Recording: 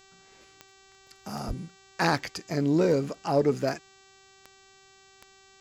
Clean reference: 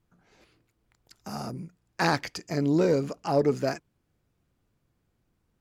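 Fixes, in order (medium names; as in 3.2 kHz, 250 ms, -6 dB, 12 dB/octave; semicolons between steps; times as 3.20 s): de-click; de-hum 386.9 Hz, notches 20; 1.47–1.59 s: high-pass 140 Hz 24 dB/octave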